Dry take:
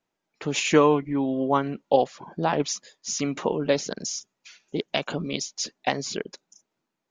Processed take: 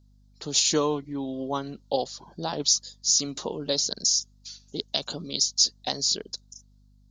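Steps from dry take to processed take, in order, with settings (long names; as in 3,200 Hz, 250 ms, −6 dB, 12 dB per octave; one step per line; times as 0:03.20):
mains hum 50 Hz, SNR 25 dB
high shelf with overshoot 3,200 Hz +11 dB, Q 3
level −6.5 dB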